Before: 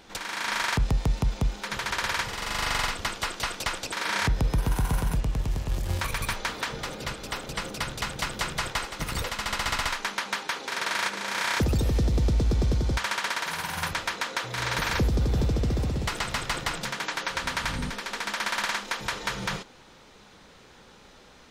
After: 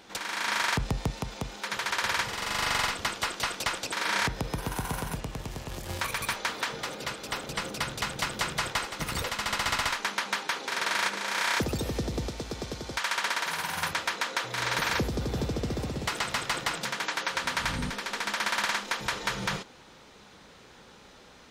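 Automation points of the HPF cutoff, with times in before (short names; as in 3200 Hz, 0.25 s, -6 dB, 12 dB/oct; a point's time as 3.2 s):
HPF 6 dB/oct
130 Hz
from 1.1 s 320 Hz
from 2.04 s 110 Hz
from 4.23 s 250 Hz
from 7.29 s 93 Hz
from 11.18 s 250 Hz
from 12.28 s 620 Hz
from 13.17 s 200 Hz
from 17.58 s 49 Hz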